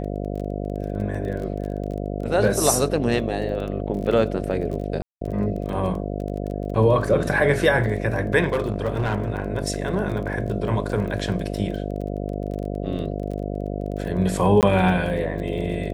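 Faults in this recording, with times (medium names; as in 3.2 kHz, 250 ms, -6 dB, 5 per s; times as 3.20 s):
buzz 50 Hz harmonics 14 -28 dBFS
crackle 21 per s -30 dBFS
5.02–5.21 s: dropout 193 ms
8.52–9.48 s: clipped -17 dBFS
14.61–14.63 s: dropout 18 ms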